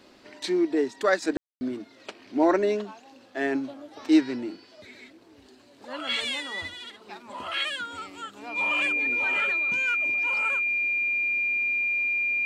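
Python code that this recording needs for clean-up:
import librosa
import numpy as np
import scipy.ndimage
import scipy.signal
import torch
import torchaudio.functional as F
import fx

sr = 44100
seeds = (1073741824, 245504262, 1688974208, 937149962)

y = fx.notch(x, sr, hz=2400.0, q=30.0)
y = fx.fix_ambience(y, sr, seeds[0], print_start_s=5.19, print_end_s=5.69, start_s=1.37, end_s=1.61)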